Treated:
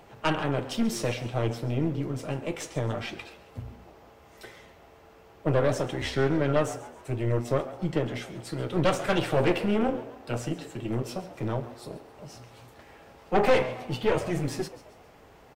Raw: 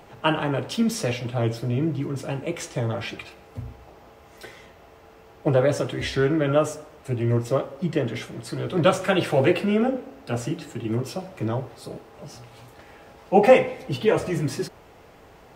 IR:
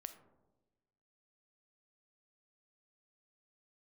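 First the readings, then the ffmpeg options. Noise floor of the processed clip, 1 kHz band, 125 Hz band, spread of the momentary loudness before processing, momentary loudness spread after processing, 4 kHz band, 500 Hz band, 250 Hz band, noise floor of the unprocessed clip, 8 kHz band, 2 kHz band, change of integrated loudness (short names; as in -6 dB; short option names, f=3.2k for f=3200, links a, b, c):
-54 dBFS, -4.0 dB, -3.5 dB, 19 LU, 18 LU, -3.5 dB, -5.0 dB, -4.5 dB, -50 dBFS, -3.5 dB, -3.5 dB, -4.5 dB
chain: -filter_complex "[0:a]aeval=exprs='(tanh(7.08*val(0)+0.7)-tanh(0.7))/7.08':c=same,asplit=5[a][b][c][d][e];[b]adelay=136,afreqshift=120,volume=-16.5dB[f];[c]adelay=272,afreqshift=240,volume=-23.6dB[g];[d]adelay=408,afreqshift=360,volume=-30.8dB[h];[e]adelay=544,afreqshift=480,volume=-37.9dB[i];[a][f][g][h][i]amix=inputs=5:normalize=0"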